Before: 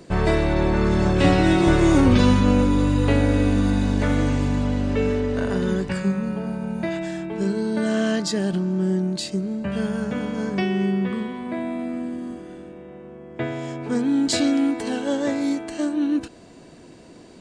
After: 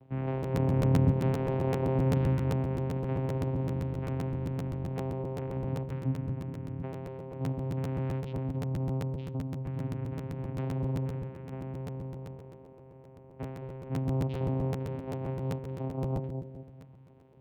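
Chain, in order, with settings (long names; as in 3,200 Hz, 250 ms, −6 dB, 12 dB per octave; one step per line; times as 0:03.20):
0:00.52–0:01.11: low-shelf EQ 230 Hz +11.5 dB
channel vocoder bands 4, saw 132 Hz
low-pass filter 3,100 Hz 24 dB per octave
bucket-brigade delay 217 ms, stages 1,024, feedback 42%, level −5 dB
regular buffer underruns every 0.13 s, samples 512, repeat, from 0:00.42
level −9 dB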